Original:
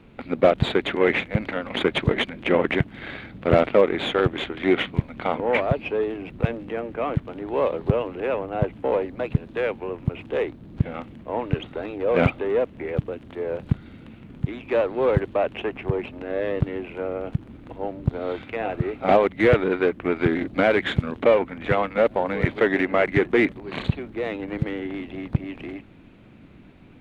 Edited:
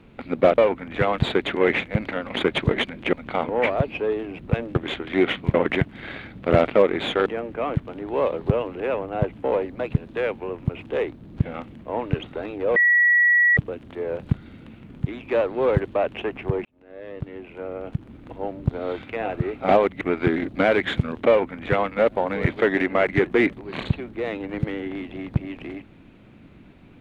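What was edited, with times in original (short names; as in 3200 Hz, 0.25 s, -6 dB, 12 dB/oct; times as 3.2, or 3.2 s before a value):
2.53–4.25 swap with 5.04–6.66
12.16–12.97 bleep 1930 Hz -13.5 dBFS
16.05–17.69 fade in
19.41–20 cut
21.28–21.88 copy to 0.58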